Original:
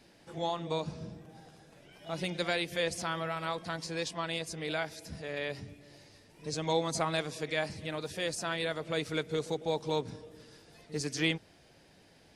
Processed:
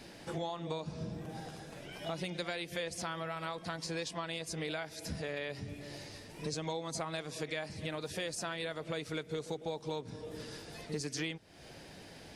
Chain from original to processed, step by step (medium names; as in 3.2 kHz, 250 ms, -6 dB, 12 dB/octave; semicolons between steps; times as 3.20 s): compression 6:1, threshold -45 dBFS, peak gain reduction 19.5 dB; trim +9 dB